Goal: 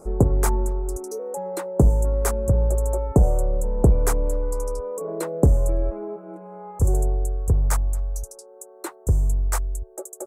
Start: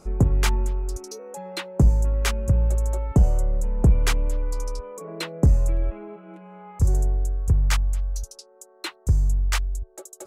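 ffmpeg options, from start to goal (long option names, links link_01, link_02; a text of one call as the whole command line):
ffmpeg -i in.wav -af "firequalizer=gain_entry='entry(160,0);entry(450,9);entry(2900,-18);entry(8100,6)':delay=0.05:min_phase=1" out.wav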